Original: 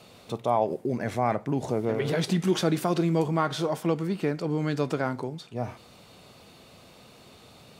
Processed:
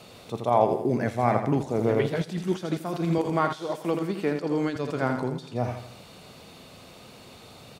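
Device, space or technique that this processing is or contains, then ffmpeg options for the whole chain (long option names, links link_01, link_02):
de-esser from a sidechain: -filter_complex "[0:a]asettb=1/sr,asplit=3[link_01][link_02][link_03];[link_01]atrim=end=3.184[link_04];[link_02]atrim=start=3.18:end=4.76,asetpts=PTS-STARTPTS,afade=type=in:duration=0.004:curve=qsin,afade=type=out:start_time=1.576:duration=0.004:curve=qsin,highpass=210[link_05];[link_03]atrim=start=4.756[link_06];[link_04][link_05]acrossfade=duration=0.004:curve1=hsin:curve2=qsin[link_07];[link_07][link_06]acrossfade=duration=0.004:curve1=qsin:curve2=hsin,aecho=1:1:82|164|246|328|410:0.376|0.169|0.0761|0.0342|0.0154,asplit=2[link_08][link_09];[link_09]highpass=frequency=4800:width=0.5412,highpass=frequency=4800:width=1.3066,apad=whole_len=361835[link_10];[link_08][link_10]sidechaincompress=threshold=-54dB:ratio=4:attack=2.6:release=64,volume=3.5dB"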